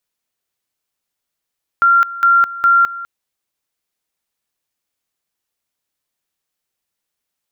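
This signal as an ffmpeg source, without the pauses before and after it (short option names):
-f lavfi -i "aevalsrc='pow(10,(-7.5-17*gte(mod(t,0.41),0.21))/20)*sin(2*PI*1380*t)':d=1.23:s=44100"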